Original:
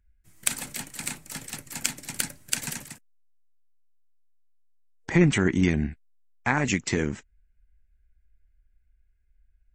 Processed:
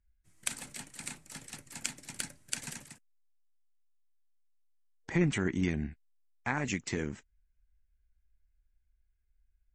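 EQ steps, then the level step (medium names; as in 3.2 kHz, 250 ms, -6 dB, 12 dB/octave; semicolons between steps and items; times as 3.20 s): low-pass 11 kHz 24 dB/octave; -8.5 dB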